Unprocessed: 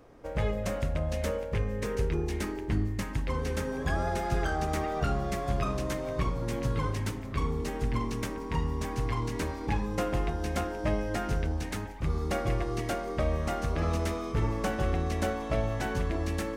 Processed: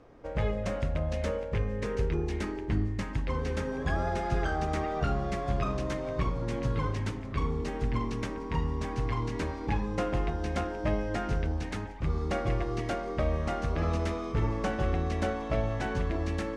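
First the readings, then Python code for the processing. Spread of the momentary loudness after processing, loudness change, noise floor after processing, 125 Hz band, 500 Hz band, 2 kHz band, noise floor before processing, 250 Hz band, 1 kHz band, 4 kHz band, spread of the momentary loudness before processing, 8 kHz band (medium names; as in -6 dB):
3 LU, 0.0 dB, -37 dBFS, 0.0 dB, 0.0 dB, -0.5 dB, -37 dBFS, 0.0 dB, -0.5 dB, -2.0 dB, 3 LU, -6.5 dB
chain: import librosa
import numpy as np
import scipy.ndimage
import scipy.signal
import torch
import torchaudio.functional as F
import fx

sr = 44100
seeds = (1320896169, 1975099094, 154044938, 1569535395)

y = fx.air_absorb(x, sr, metres=76.0)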